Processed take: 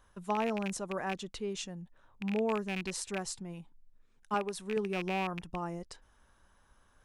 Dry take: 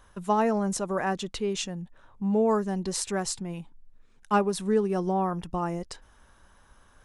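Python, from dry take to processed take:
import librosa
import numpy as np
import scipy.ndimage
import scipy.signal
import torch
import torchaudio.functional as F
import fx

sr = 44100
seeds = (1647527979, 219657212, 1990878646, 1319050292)

y = fx.rattle_buzz(x, sr, strikes_db=-31.0, level_db=-19.0)
y = fx.peak_eq(y, sr, hz=91.0, db=-12.0, octaves=2.1, at=(4.34, 4.77))
y = y * librosa.db_to_amplitude(-8.0)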